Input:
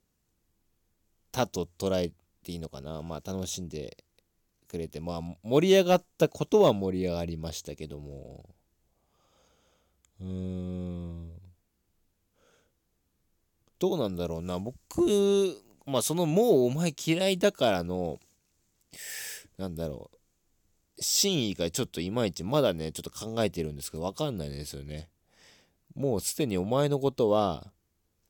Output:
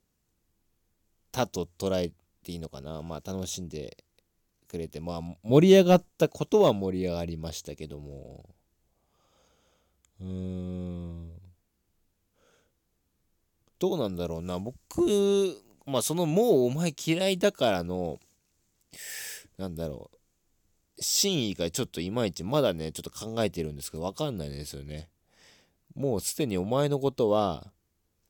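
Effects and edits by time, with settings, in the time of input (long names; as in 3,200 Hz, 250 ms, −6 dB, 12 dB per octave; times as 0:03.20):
0:05.49–0:06.09: low-shelf EQ 290 Hz +10 dB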